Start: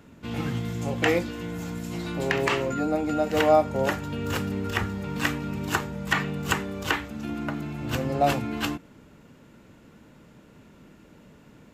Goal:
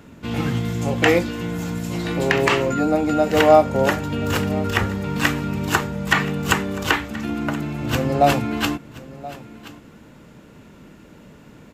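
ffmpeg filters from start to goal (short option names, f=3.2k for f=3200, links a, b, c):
-af "aecho=1:1:1027:0.119,volume=6.5dB"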